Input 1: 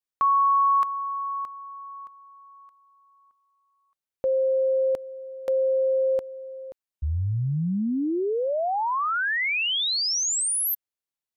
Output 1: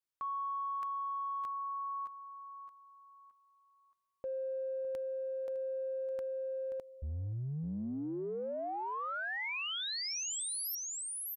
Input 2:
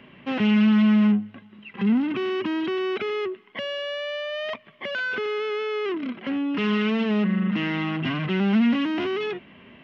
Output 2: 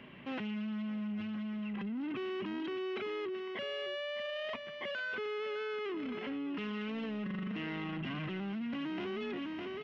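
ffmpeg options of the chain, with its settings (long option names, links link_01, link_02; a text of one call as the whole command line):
ffmpeg -i in.wav -af "aecho=1:1:608:0.251,areverse,acompressor=threshold=-33dB:ratio=12:attack=2.3:release=22:knee=1:detection=peak,areverse,volume=-3.5dB" out.wav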